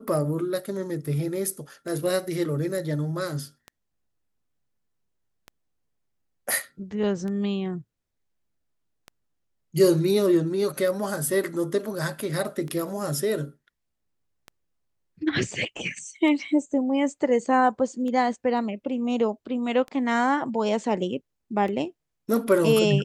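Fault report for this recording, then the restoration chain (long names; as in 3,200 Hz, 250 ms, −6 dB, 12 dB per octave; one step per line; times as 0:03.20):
scratch tick 33 1/3 rpm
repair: click removal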